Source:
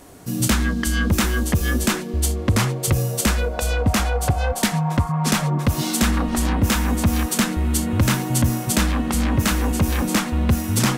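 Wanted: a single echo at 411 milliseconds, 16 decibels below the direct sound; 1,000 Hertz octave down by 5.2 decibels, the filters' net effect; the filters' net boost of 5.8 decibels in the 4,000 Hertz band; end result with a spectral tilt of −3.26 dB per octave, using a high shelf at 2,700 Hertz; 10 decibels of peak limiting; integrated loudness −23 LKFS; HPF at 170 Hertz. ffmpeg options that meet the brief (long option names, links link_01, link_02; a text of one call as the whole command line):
ffmpeg -i in.wav -af "highpass=170,equalizer=frequency=1000:width_type=o:gain=-8,highshelf=frequency=2700:gain=5,equalizer=frequency=4000:width_type=o:gain=3.5,alimiter=limit=-12.5dB:level=0:latency=1,aecho=1:1:411:0.158,volume=0.5dB" out.wav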